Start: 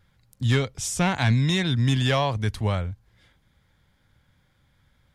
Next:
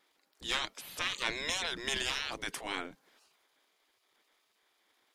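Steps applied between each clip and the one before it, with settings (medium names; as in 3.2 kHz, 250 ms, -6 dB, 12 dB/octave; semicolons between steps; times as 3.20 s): transient shaper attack -3 dB, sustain +5 dB; spectral gate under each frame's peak -20 dB weak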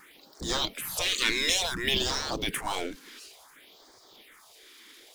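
power-law waveshaper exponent 0.7; phase shifter stages 4, 0.57 Hz, lowest notch 110–2700 Hz; trim +5 dB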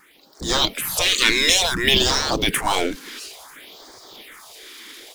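level rider gain up to 12 dB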